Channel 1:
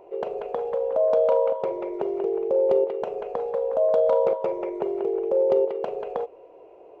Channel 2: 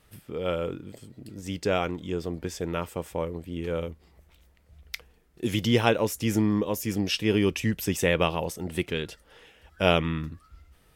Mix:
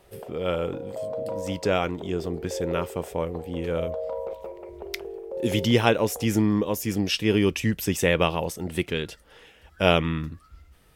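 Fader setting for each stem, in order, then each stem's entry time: −11.5, +2.0 decibels; 0.00, 0.00 seconds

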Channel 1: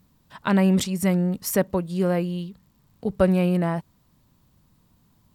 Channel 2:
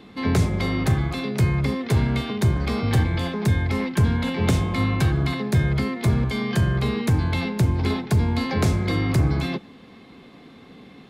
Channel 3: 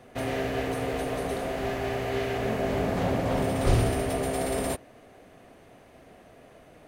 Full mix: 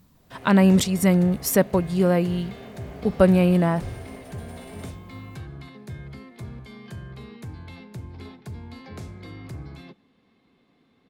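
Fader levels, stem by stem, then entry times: +3.0, −17.5, −15.0 decibels; 0.00, 0.35, 0.15 seconds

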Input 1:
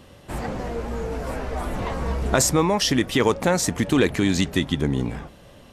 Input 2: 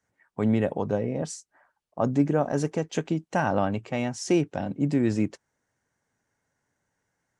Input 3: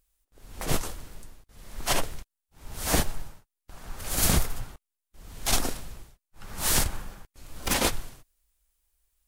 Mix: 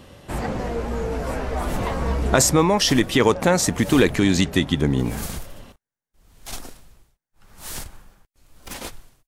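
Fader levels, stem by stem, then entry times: +2.5, −17.0, −9.5 decibels; 0.00, 0.00, 1.00 seconds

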